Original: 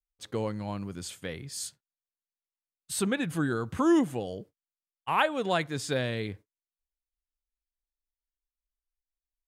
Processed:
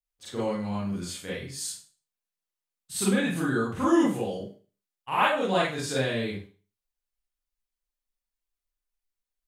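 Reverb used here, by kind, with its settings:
four-comb reverb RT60 0.37 s, combs from 31 ms, DRR −8 dB
level −5.5 dB

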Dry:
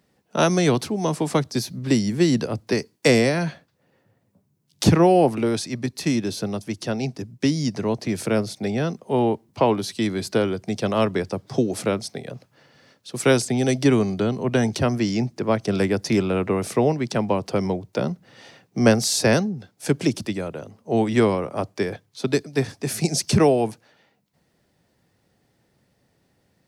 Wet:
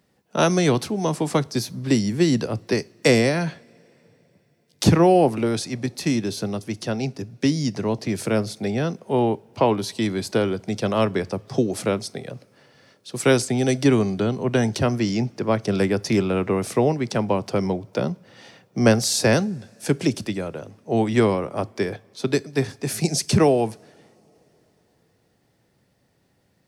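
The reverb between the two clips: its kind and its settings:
coupled-rooms reverb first 0.3 s, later 3.9 s, from −22 dB, DRR 18.5 dB

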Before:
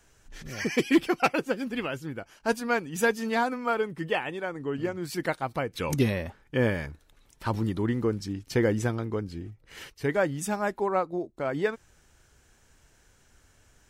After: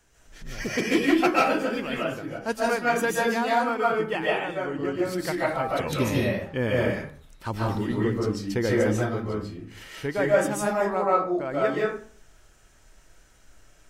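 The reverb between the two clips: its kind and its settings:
comb and all-pass reverb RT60 0.49 s, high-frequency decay 0.6×, pre-delay 105 ms, DRR −5.5 dB
level −2.5 dB

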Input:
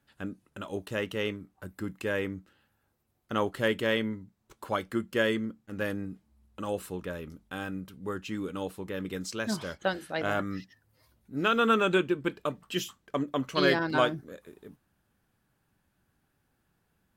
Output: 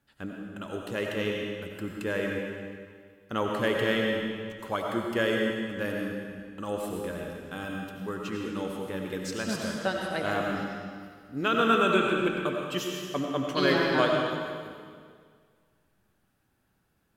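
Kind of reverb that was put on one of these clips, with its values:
comb and all-pass reverb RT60 1.9 s, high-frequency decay 0.95×, pre-delay 50 ms, DRR 0 dB
level −1 dB

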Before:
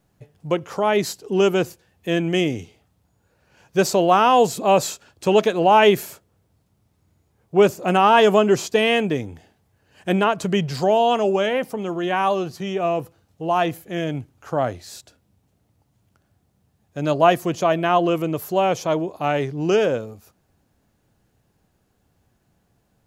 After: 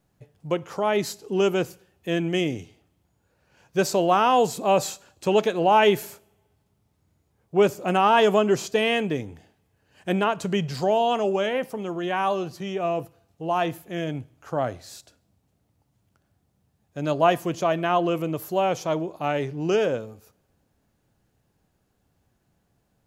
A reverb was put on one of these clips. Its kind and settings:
coupled-rooms reverb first 0.57 s, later 1.8 s, from −24 dB, DRR 19 dB
level −4 dB

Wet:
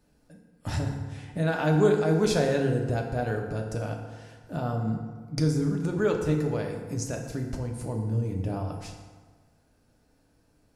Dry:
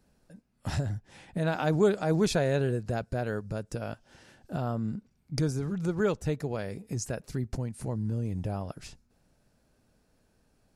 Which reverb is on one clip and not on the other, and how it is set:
feedback delay network reverb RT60 1.5 s, low-frequency decay 0.95×, high-frequency decay 0.6×, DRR 1.5 dB

